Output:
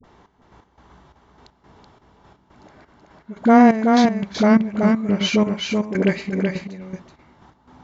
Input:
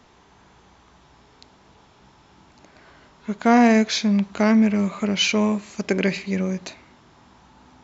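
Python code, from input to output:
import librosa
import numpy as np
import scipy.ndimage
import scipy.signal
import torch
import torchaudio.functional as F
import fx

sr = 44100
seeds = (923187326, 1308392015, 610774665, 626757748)

p1 = fx.high_shelf(x, sr, hz=2900.0, db=-12.0)
p2 = fx.notch(p1, sr, hz=2500.0, q=12.0)
p3 = fx.dispersion(p2, sr, late='highs', ms=41.0, hz=570.0)
p4 = fx.step_gate(p3, sr, bpm=174, pattern='xxx...x..x', floor_db=-12.0, edge_ms=4.5)
p5 = p4 + fx.echo_single(p4, sr, ms=378, db=-4.0, dry=0)
y = p5 * 10.0 ** (4.0 / 20.0)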